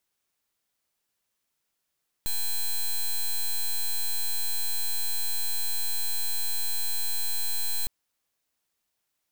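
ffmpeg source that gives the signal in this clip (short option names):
-f lavfi -i "aevalsrc='0.0501*(2*lt(mod(4080*t,1),0.08)-1)':d=5.61:s=44100"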